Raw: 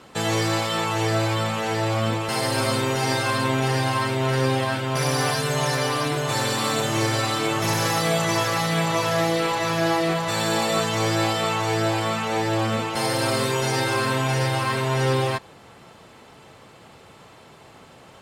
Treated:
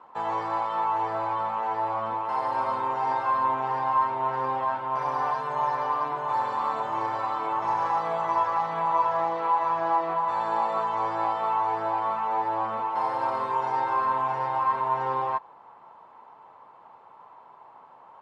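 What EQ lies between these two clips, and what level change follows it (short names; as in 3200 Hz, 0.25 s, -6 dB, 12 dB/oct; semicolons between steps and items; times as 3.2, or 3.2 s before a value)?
synth low-pass 960 Hz, resonance Q 6.5; tilt +4.5 dB/oct; -8.0 dB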